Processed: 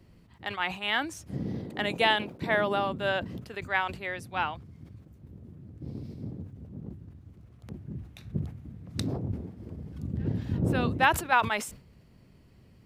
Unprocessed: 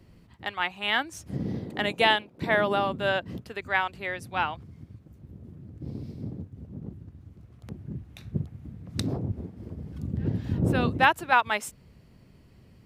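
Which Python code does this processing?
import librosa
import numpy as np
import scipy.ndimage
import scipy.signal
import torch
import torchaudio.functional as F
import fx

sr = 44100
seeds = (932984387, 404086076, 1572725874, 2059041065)

y = fx.sustainer(x, sr, db_per_s=110.0)
y = y * 10.0 ** (-2.5 / 20.0)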